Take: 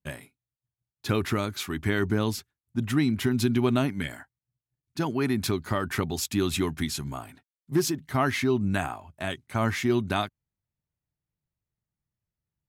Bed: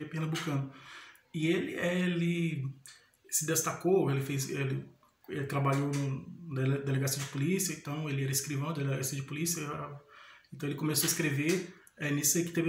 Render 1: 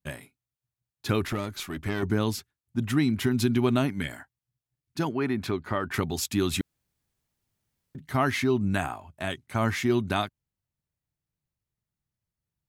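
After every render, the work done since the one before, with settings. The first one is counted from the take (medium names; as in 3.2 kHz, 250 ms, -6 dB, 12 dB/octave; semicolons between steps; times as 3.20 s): 1.27–2.03 s: valve stage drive 20 dB, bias 0.55; 5.09–5.94 s: tone controls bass -4 dB, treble -13 dB; 6.61–7.95 s: room tone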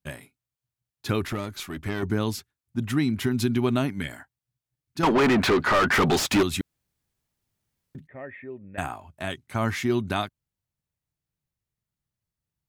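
5.03–6.43 s: overdrive pedal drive 33 dB, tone 2.4 kHz, clips at -12 dBFS; 8.07–8.78 s: cascade formant filter e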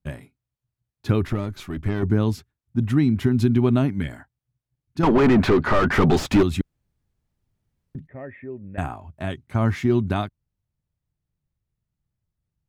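tilt EQ -2.5 dB/octave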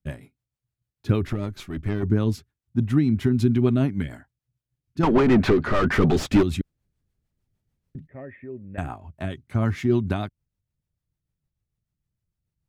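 rotary cabinet horn 6.7 Hz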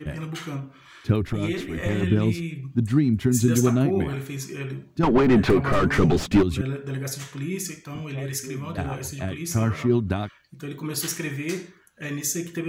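add bed +1 dB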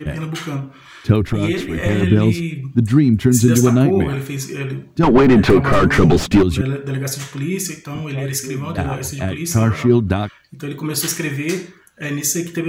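trim +7.5 dB; peak limiter -2 dBFS, peak gain reduction 3 dB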